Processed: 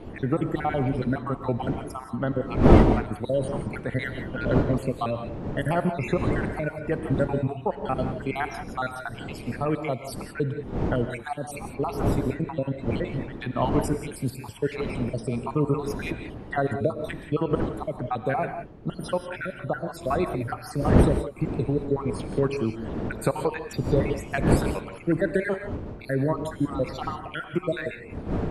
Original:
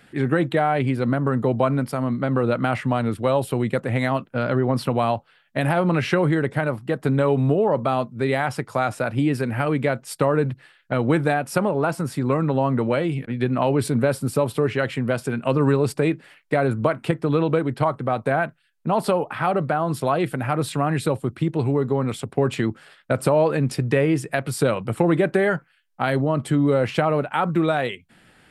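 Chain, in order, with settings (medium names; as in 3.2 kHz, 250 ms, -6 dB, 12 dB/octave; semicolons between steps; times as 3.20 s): random holes in the spectrogram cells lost 62%; wind noise 310 Hz -27 dBFS; gated-style reverb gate 200 ms rising, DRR 7.5 dB; trim -3 dB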